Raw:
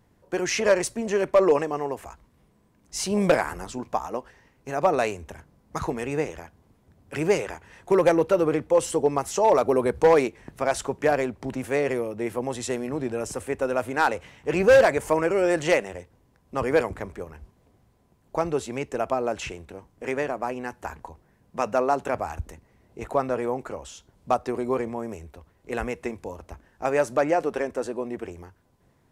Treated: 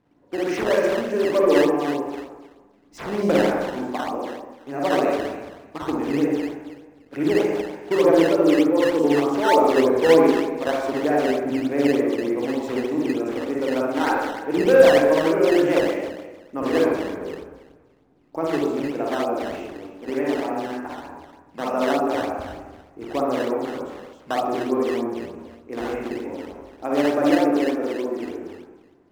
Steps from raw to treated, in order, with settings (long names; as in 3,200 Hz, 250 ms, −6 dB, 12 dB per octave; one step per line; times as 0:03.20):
parametric band 290 Hz +13 dB 0.41 octaves
convolution reverb RT60 1.3 s, pre-delay 43 ms, DRR −5 dB
sample-and-hold swept by an LFO 11×, swing 160% 3.3 Hz
low-pass filter 1,600 Hz 6 dB per octave
low-shelf EQ 150 Hz −11.5 dB
level −3 dB